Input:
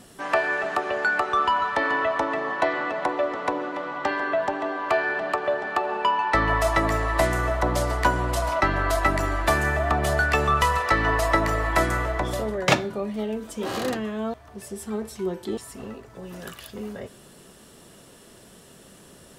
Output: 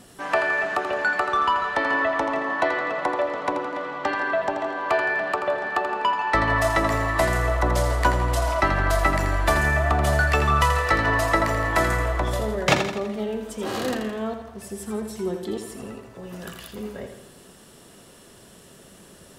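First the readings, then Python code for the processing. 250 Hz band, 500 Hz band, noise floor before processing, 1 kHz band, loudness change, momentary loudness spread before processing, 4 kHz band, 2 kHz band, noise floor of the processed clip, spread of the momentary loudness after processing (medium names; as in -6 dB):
+0.5 dB, +0.5 dB, -50 dBFS, +0.5 dB, +1.0 dB, 14 LU, +1.0 dB, +1.5 dB, -49 dBFS, 15 LU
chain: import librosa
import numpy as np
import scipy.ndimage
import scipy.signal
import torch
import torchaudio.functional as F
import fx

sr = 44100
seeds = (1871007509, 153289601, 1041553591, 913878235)

y = fx.echo_feedback(x, sr, ms=83, feedback_pct=52, wet_db=-8.0)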